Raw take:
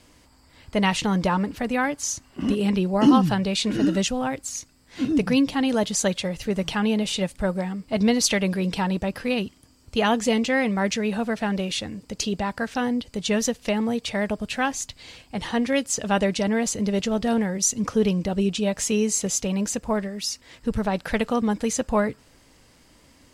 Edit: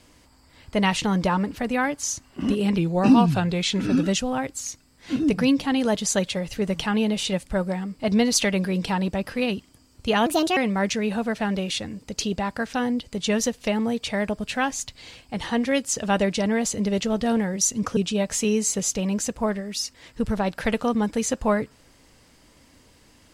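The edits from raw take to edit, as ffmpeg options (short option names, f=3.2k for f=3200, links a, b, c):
-filter_complex "[0:a]asplit=6[a][b][c][d][e][f];[a]atrim=end=2.784[g];[b]atrim=start=2.78:end=3.92,asetpts=PTS-STARTPTS,asetrate=40131,aresample=44100,atrim=end_sample=55246,asetpts=PTS-STARTPTS[h];[c]atrim=start=3.916:end=10.154[i];[d]atrim=start=10.15:end=10.58,asetpts=PTS-STARTPTS,asetrate=62181,aresample=44100[j];[e]atrim=start=10.576:end=17.982[k];[f]atrim=start=18.438[l];[g][h]acrossfade=d=0.004:c1=hsin:c2=hsin[m];[m][i]acrossfade=d=0.004:c1=hsin:c2=hsin[n];[n][j]acrossfade=d=0.004:c1=hsin:c2=hsin[o];[o][k]acrossfade=d=0.004:c1=hsin:c2=hsin[p];[p][l]acrossfade=d=0.004:c1=hsin:c2=hsin"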